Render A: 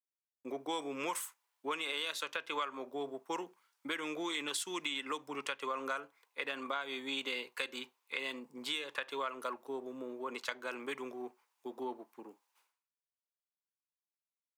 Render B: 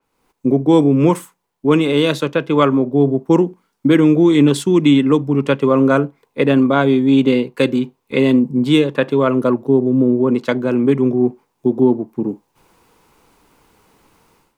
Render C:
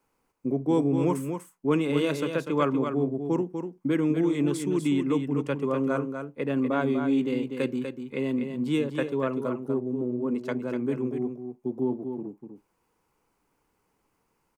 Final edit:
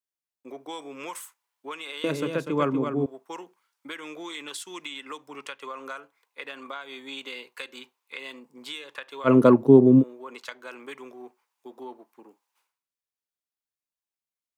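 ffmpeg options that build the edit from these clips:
-filter_complex "[0:a]asplit=3[a][b][c];[a]atrim=end=2.042[d];[2:a]atrim=start=2.038:end=3.062[e];[b]atrim=start=3.058:end=9.3[f];[1:a]atrim=start=9.24:end=10.04[g];[c]atrim=start=9.98[h];[d][e]acrossfade=d=0.004:c1=hsin:c2=hsin[i];[i][f]acrossfade=d=0.004:c1=hsin:c2=hsin[j];[j][g]acrossfade=d=0.06:c1=tri:c2=tri[k];[k][h]acrossfade=d=0.06:c1=tri:c2=tri"

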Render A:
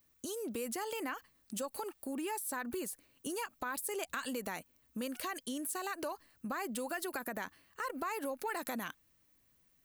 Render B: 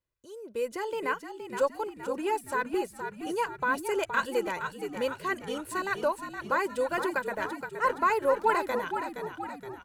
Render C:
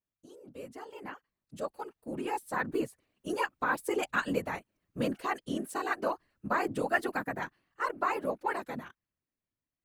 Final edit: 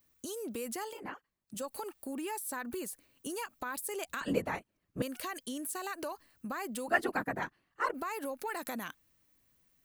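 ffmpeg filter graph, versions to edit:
-filter_complex "[2:a]asplit=3[a][b][c];[0:a]asplit=4[d][e][f][g];[d]atrim=end=1.01[h];[a]atrim=start=0.85:end=1.62[i];[e]atrim=start=1.46:end=4.212[j];[b]atrim=start=4.208:end=5.022[k];[f]atrim=start=5.018:end=6.882[l];[c]atrim=start=6.878:end=7.942[m];[g]atrim=start=7.938[n];[h][i]acrossfade=d=0.16:c1=tri:c2=tri[o];[o][j]acrossfade=d=0.16:c1=tri:c2=tri[p];[p][k]acrossfade=d=0.004:c1=hsin:c2=hsin[q];[q][l]acrossfade=d=0.004:c1=hsin:c2=hsin[r];[r][m]acrossfade=d=0.004:c1=hsin:c2=hsin[s];[s][n]acrossfade=d=0.004:c1=hsin:c2=hsin"

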